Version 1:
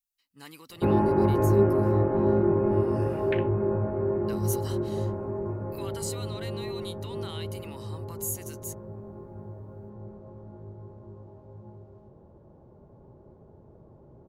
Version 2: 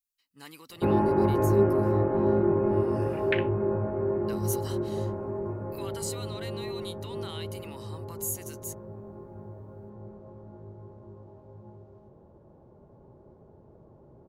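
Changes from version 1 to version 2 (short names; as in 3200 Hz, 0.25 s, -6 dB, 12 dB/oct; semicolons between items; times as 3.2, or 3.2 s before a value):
second sound +6.5 dB; master: add low shelf 180 Hz -3.5 dB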